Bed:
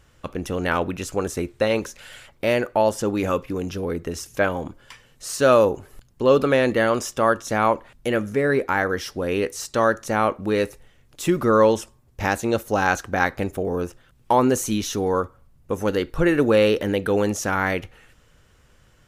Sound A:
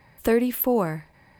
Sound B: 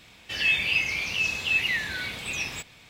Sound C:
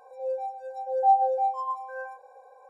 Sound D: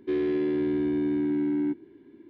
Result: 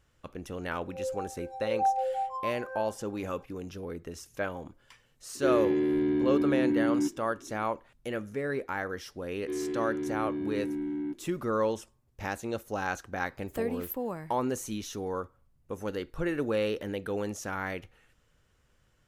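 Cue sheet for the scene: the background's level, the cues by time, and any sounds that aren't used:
bed -12 dB
0.76 add C -4 dB + Butterworth band-stop 720 Hz, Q 6.5
5.35 add D -0.5 dB
9.4 add D -7 dB + notch 570 Hz, Q 7.4
13.3 add A -12.5 dB
not used: B

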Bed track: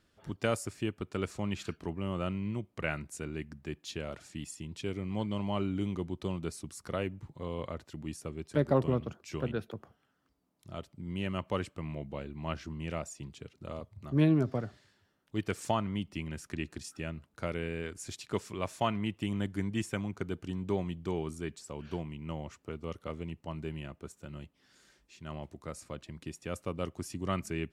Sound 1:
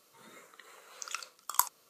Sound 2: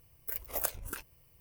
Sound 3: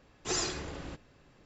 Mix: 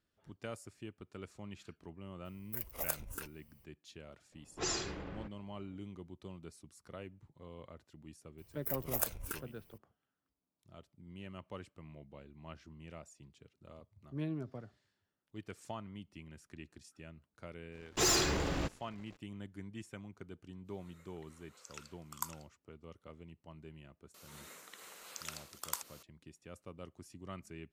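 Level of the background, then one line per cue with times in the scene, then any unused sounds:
bed track -13.5 dB
2.25 add 2 -4 dB
4.32 add 3 -4 dB + low-pass opened by the level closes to 790 Hz, open at -28 dBFS
8.38 add 2 -1.5 dB
17.72 add 3 -4 dB + sample leveller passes 3
20.63 add 1 -12.5 dB, fades 0.10 s + echo 0.555 s -7 dB
24.14 add 1 -12.5 dB + spectral compressor 2:1

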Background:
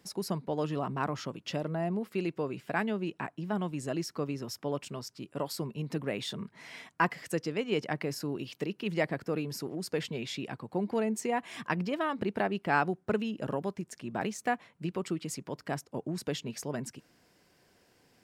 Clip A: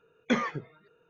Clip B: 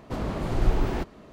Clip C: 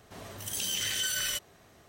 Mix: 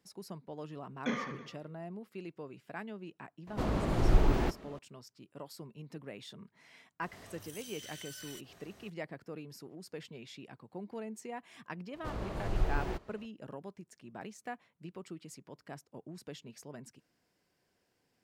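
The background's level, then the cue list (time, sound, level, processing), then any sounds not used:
background -12 dB
0.76 add A -9.5 dB + reverse bouncing-ball echo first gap 30 ms, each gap 1.4×, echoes 5
3.47 add B -2 dB
7.02 add C -1 dB + compressor 3:1, threshold -51 dBFS
11.94 add B -8 dB + bell 240 Hz -6.5 dB

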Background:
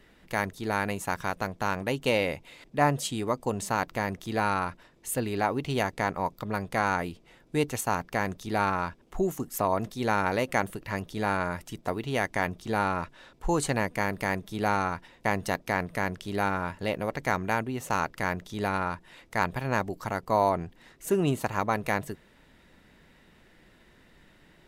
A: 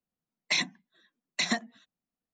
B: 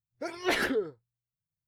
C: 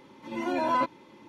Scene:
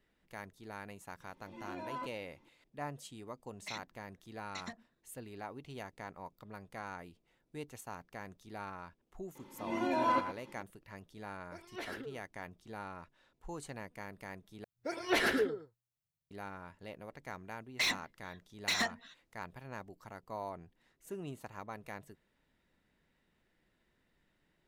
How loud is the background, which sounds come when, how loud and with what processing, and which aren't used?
background -18 dB
1.21 add C -16.5 dB
3.16 add A -17 dB + Wiener smoothing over 15 samples
9.35 add C -4.5 dB + echo 0.114 s -11 dB
11.3 add B -16 dB
14.64 replace with B -2.5 dB + echo 0.111 s -8.5 dB
17.29 add A -8.5 dB + overdrive pedal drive 20 dB, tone 5800 Hz, clips at -15.5 dBFS

